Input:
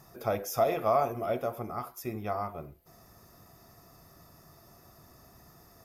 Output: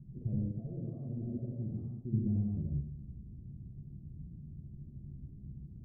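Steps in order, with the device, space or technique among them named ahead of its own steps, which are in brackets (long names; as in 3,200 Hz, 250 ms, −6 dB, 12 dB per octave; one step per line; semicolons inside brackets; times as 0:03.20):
club heard from the street (brickwall limiter −26 dBFS, peak gain reduction 10.5 dB; low-pass filter 220 Hz 24 dB per octave; convolution reverb RT60 0.75 s, pre-delay 66 ms, DRR −1 dB)
0:00.51–0:02.13: low-shelf EQ 220 Hz −7 dB
level +8.5 dB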